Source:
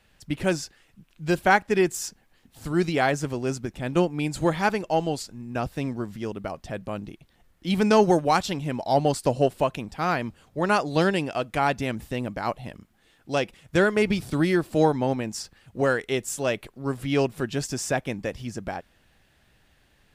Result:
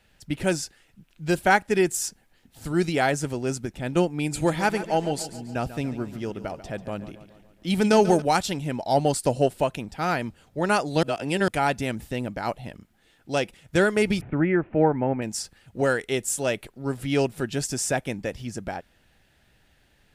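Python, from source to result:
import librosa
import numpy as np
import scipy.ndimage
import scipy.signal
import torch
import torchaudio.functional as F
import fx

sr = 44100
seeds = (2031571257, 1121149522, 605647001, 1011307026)

y = fx.echo_feedback(x, sr, ms=141, feedback_pct=56, wet_db=-14.0, at=(4.17, 8.22))
y = fx.steep_lowpass(y, sr, hz=2500.0, slope=48, at=(14.21, 15.22))
y = fx.edit(y, sr, fx.reverse_span(start_s=11.03, length_s=0.45), tone=tone)
y = fx.notch(y, sr, hz=1100.0, q=8.7)
y = fx.dynamic_eq(y, sr, hz=9500.0, q=1.2, threshold_db=-52.0, ratio=4.0, max_db=7)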